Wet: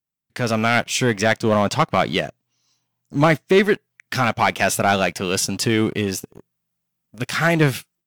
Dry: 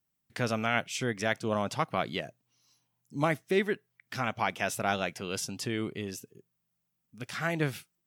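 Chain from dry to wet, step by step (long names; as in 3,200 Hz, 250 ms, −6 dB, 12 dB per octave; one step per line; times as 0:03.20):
0:01.17–0:03.64: parametric band 11,000 Hz −11.5 dB 0.33 octaves
leveller curve on the samples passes 2
automatic gain control gain up to 10.5 dB
level −3 dB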